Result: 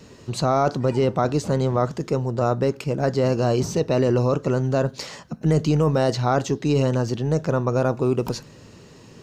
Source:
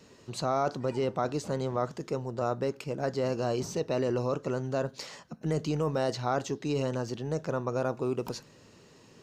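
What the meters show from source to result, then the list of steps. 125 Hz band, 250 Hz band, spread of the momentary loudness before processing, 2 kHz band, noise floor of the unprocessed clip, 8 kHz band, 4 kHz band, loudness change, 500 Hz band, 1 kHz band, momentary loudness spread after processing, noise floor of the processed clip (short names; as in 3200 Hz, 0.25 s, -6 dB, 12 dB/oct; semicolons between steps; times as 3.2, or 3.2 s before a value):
+12.5 dB, +10.0 dB, 6 LU, +7.5 dB, -56 dBFS, +7.5 dB, +7.5 dB, +9.5 dB, +8.5 dB, +8.0 dB, 6 LU, -47 dBFS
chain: low shelf 180 Hz +8 dB; gain +7.5 dB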